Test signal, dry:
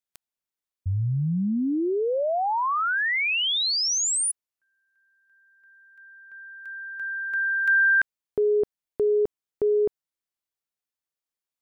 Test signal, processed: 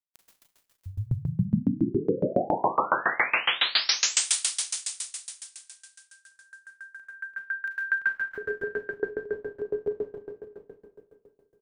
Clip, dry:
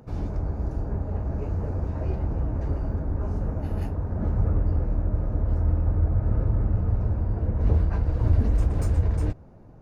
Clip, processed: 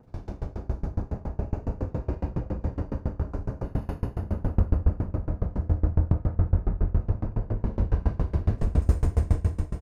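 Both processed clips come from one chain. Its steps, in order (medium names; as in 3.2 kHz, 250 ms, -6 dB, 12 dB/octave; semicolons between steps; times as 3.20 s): delay 654 ms -12 dB; Schroeder reverb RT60 3.1 s, combs from 33 ms, DRR -8 dB; sawtooth tremolo in dB decaying 7.2 Hz, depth 26 dB; trim -2.5 dB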